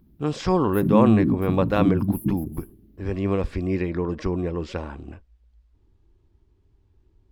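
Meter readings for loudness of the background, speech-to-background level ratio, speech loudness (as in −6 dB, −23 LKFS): −23.5 LKFS, −1.5 dB, −25.0 LKFS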